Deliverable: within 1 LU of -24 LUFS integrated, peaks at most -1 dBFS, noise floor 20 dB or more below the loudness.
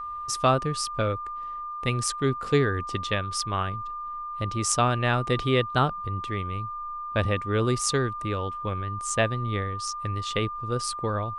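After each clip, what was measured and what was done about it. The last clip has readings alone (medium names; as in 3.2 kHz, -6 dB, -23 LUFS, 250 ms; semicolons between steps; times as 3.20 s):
steady tone 1.2 kHz; tone level -32 dBFS; loudness -27.0 LUFS; peak level -6.5 dBFS; loudness target -24.0 LUFS
-> band-stop 1.2 kHz, Q 30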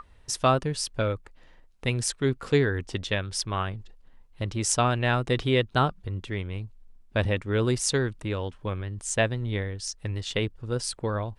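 steady tone not found; loudness -27.5 LUFS; peak level -6.5 dBFS; loudness target -24.0 LUFS
-> trim +3.5 dB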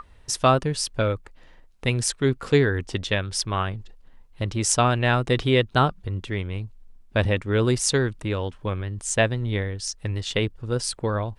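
loudness -24.0 LUFS; peak level -3.0 dBFS; noise floor -51 dBFS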